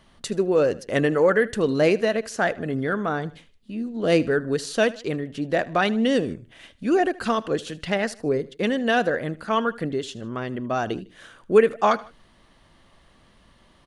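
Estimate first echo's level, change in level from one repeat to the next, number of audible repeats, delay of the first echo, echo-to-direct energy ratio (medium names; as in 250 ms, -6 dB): -20.0 dB, -7.0 dB, 2, 77 ms, -19.0 dB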